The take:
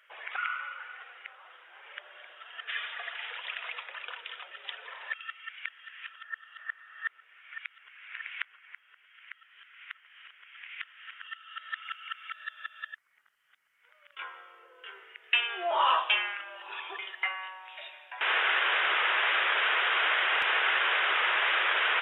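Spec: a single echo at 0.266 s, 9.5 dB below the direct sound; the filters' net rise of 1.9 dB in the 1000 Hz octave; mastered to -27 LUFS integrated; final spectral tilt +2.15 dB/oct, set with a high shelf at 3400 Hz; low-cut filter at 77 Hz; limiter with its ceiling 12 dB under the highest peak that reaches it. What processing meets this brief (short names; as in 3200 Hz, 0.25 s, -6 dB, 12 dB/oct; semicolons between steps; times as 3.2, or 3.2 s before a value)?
HPF 77 Hz; bell 1000 Hz +3 dB; high shelf 3400 Hz -5.5 dB; limiter -24.5 dBFS; echo 0.266 s -9.5 dB; gain +8.5 dB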